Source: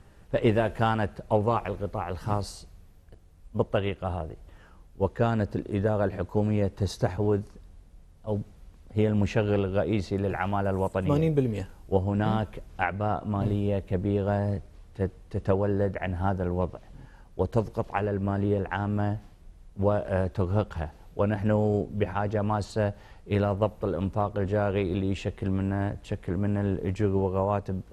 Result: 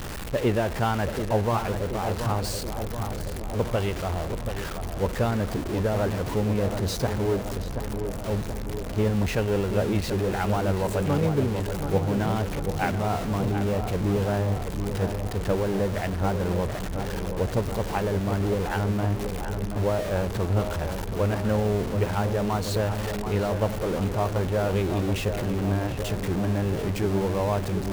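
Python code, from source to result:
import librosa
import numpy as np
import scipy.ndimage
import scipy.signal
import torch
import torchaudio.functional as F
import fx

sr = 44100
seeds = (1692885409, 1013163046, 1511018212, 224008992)

y = x + 0.5 * 10.0 ** (-26.0 / 20.0) * np.sign(x)
y = fx.echo_filtered(y, sr, ms=730, feedback_pct=69, hz=1900.0, wet_db=-7.5)
y = F.gain(torch.from_numpy(y), -2.5).numpy()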